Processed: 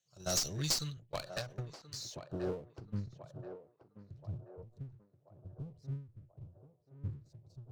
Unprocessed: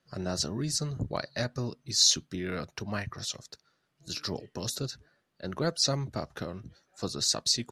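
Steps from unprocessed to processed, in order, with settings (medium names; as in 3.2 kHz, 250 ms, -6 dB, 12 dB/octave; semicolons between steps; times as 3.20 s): local Wiener filter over 9 samples; pre-emphasis filter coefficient 0.97; gate -56 dBFS, range -36 dB; ten-band graphic EQ 125 Hz +9 dB, 250 Hz -9 dB, 1 kHz -5 dB, 2 kHz -10 dB, 8 kHz +10 dB; peak limiter -19 dBFS, peak gain reduction 10 dB; compression 3:1, threshold -41 dBFS, peak gain reduction 12 dB; low-pass sweep 5.6 kHz -> 110 Hz, 0.56–3.63 s; power-law waveshaper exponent 0.7; LFO notch sine 0.95 Hz 640–2100 Hz; valve stage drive 40 dB, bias 0.6; on a send: band-passed feedback delay 1031 ms, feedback 51%, band-pass 650 Hz, level -8.5 dB; on the sum: endings held to a fixed fall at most 140 dB/s; trim +16 dB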